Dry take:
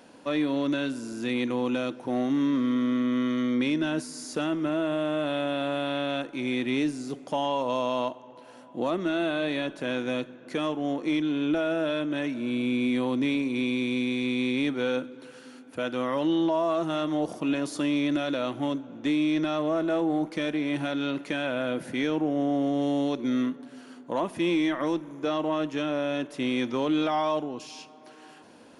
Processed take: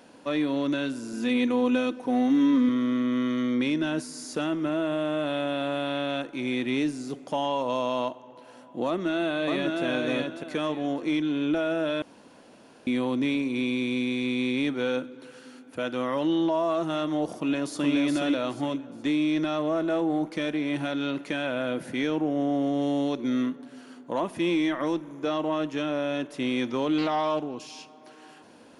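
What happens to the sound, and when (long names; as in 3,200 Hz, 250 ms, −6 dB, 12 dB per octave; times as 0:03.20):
0:01.13–0:02.69: comb filter 4 ms, depth 71%
0:08.87–0:09.83: delay throw 600 ms, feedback 25%, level −2.5 dB
0:12.02–0:12.87: fill with room tone
0:17.37–0:17.92: delay throw 420 ms, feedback 30%, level −3 dB
0:26.98–0:27.56: highs frequency-modulated by the lows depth 0.2 ms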